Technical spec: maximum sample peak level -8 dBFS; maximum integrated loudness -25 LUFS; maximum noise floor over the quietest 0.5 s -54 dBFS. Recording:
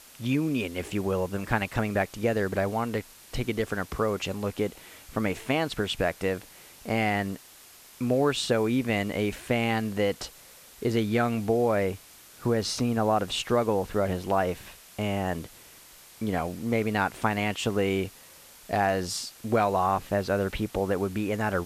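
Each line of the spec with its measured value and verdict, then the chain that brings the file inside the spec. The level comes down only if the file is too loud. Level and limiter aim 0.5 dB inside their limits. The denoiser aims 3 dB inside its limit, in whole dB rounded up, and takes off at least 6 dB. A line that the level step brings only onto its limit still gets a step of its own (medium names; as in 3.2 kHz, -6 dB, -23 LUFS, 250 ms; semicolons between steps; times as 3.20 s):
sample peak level -8.5 dBFS: pass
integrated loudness -28.0 LUFS: pass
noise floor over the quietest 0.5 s -51 dBFS: fail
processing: noise reduction 6 dB, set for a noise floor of -51 dBFS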